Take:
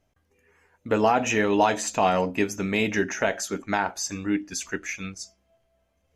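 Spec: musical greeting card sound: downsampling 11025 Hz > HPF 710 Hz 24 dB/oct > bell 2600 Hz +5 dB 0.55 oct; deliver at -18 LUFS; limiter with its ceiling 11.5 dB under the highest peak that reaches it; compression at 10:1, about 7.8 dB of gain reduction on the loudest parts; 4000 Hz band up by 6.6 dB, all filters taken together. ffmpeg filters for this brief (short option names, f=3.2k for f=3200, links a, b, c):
-af "equalizer=f=4k:t=o:g=6.5,acompressor=threshold=-23dB:ratio=10,alimiter=limit=-22dB:level=0:latency=1,aresample=11025,aresample=44100,highpass=f=710:w=0.5412,highpass=f=710:w=1.3066,equalizer=f=2.6k:t=o:w=0.55:g=5,volume=16.5dB"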